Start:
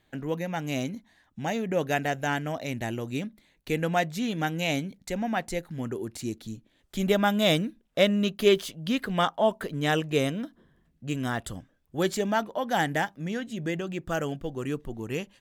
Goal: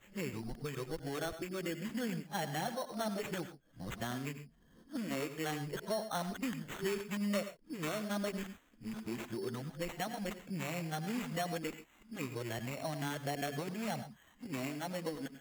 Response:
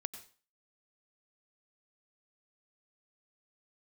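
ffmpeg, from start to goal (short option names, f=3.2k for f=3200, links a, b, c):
-filter_complex "[0:a]areverse,aresample=22050,aresample=44100,acrossover=split=900|6400[a][b][c];[a]acompressor=threshold=-36dB:ratio=4[d];[b]acompressor=threshold=-42dB:ratio=4[e];[c]acompressor=threshold=-48dB:ratio=4[f];[d][e][f]amix=inputs=3:normalize=0,flanger=delay=0.3:depth=6.4:regen=-42:speed=0.15:shape=triangular[g];[1:a]atrim=start_sample=2205,atrim=end_sample=6174[h];[g][h]afir=irnorm=-1:irlink=0,acrusher=samples=9:mix=1:aa=0.000001,volume=3.5dB"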